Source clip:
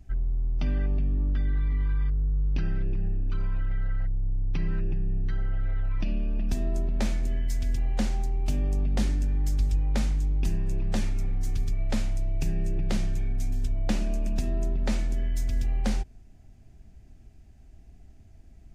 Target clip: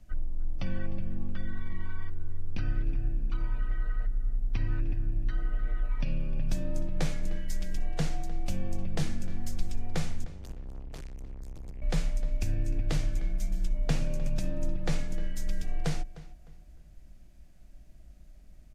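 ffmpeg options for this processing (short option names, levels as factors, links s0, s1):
-filter_complex "[0:a]equalizer=f=87:t=o:w=0.52:g=8,acrusher=bits=11:mix=0:aa=0.000001,asettb=1/sr,asplit=3[s0][s1][s2];[s0]atrim=end=10.244[s3];[s1]atrim=start=10.24:end=11.82,asetpts=PTS-STARTPTS,afade=t=in:d=0.004:c=qsin,afade=t=out:st=1.576:d=0.004:c=qsin,aeval=exprs='(tanh(70.8*val(0)+0.5)-tanh(0.5))/70.8':c=same[s4];[s2]atrim=start=11.816[s5];[s3][s4]acrossfade=d=0.004:c1=hsin:c2=qsin[s6];[s6][s5]acrossfade=d=0.004:c1=qsin:c2=hsin,afreqshift=-60,asplit=2[s7][s8];[s8]adelay=305,lowpass=f=3900:p=1,volume=0.141,asplit=2[s9][s10];[s10]adelay=305,lowpass=f=3900:p=1,volume=0.3,asplit=2[s11][s12];[s12]adelay=305,lowpass=f=3900:p=1,volume=0.3[s13];[s9][s11][s13]amix=inputs=3:normalize=0[s14];[s7][s14]amix=inputs=2:normalize=0,aresample=32000,aresample=44100,volume=0.841"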